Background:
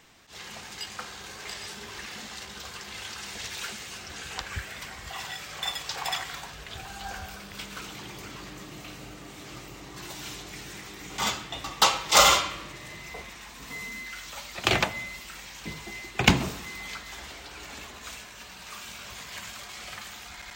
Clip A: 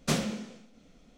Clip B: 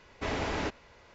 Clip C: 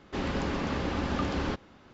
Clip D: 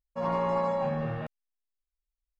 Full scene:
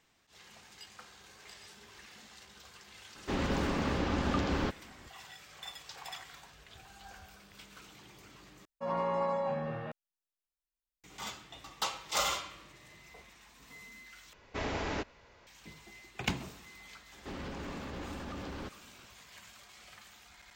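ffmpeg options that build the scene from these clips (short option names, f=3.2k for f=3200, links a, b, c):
-filter_complex "[3:a]asplit=2[a][b];[0:a]volume=-14dB[c];[4:a]lowshelf=f=130:g=-10.5[d];[b]alimiter=level_in=4.5dB:limit=-24dB:level=0:latency=1:release=26,volume=-4.5dB[e];[c]asplit=3[f][g][h];[f]atrim=end=8.654[i];[d]atrim=end=2.39,asetpts=PTS-STARTPTS,volume=-3.5dB[j];[g]atrim=start=11.036:end=14.334[k];[2:a]atrim=end=1.14,asetpts=PTS-STARTPTS,volume=-3dB[l];[h]atrim=start=15.466[m];[a]atrim=end=1.93,asetpts=PTS-STARTPTS,volume=-1dB,afade=t=in:d=0.004:c=hsin,afade=t=out:st=1.926:d=0.004:c=hsin,adelay=3150[n];[e]atrim=end=1.93,asetpts=PTS-STARTPTS,volume=-5.5dB,afade=t=in:d=0.004:c=hsin,afade=t=out:st=1.926:d=0.004:c=hsin,adelay=17130[o];[i][j]acrossfade=d=0.004:c1=hsin:c2=hsin[p];[p][k]acrossfade=d=0.004:c1=hsin:c2=hsin[q];[q][l]acrossfade=d=0.004:c1=hsin:c2=hsin[r];[r][m]acrossfade=d=0.004:c1=hsin:c2=hsin[s];[s][n][o]amix=inputs=3:normalize=0"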